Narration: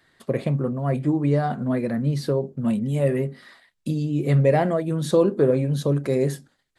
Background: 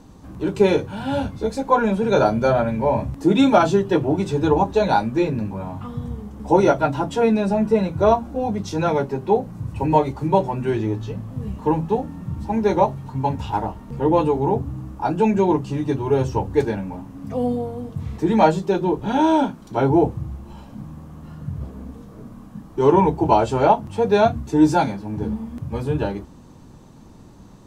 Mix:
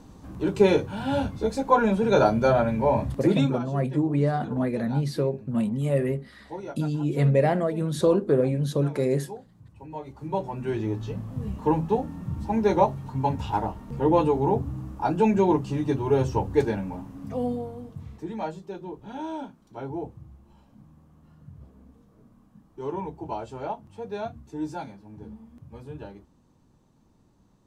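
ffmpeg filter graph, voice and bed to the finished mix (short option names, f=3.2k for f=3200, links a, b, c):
-filter_complex "[0:a]adelay=2900,volume=-2.5dB[a];[1:a]volume=16dB,afade=t=out:st=3.2:d=0.37:silence=0.112202,afade=t=in:st=9.95:d=1.23:silence=0.11885,afade=t=out:st=16.99:d=1.36:silence=0.199526[b];[a][b]amix=inputs=2:normalize=0"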